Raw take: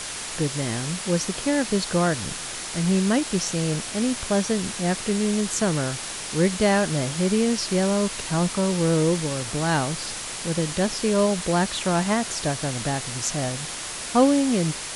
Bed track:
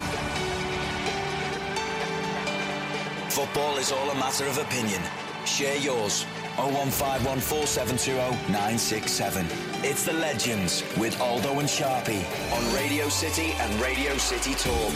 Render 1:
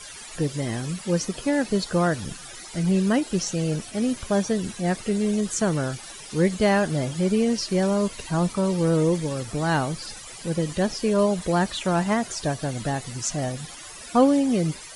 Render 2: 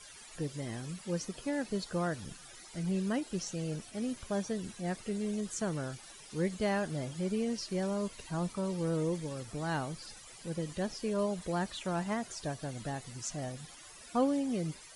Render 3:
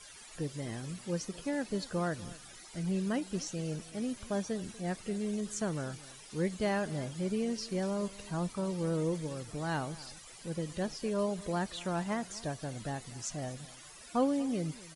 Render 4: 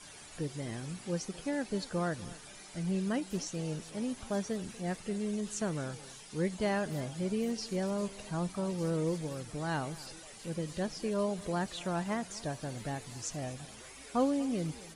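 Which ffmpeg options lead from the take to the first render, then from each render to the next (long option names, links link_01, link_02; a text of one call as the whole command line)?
ffmpeg -i in.wav -af "afftdn=noise_reduction=15:noise_floor=-33" out.wav
ffmpeg -i in.wav -af "volume=-11.5dB" out.wav
ffmpeg -i in.wav -af "aecho=1:1:242:0.106" out.wav
ffmpeg -i in.wav -i bed.wav -filter_complex "[1:a]volume=-29dB[link_01];[0:a][link_01]amix=inputs=2:normalize=0" out.wav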